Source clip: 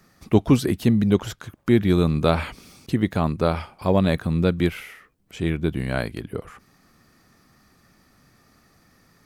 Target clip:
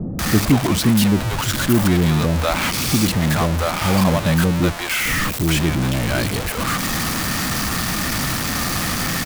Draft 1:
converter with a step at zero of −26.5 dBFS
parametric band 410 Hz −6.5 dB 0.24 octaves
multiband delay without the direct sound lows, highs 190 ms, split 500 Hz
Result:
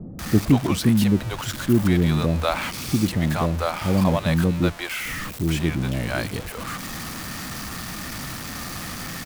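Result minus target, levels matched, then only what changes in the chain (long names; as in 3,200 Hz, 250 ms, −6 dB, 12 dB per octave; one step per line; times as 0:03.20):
converter with a step at zero: distortion −8 dB
change: converter with a step at zero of −15.5 dBFS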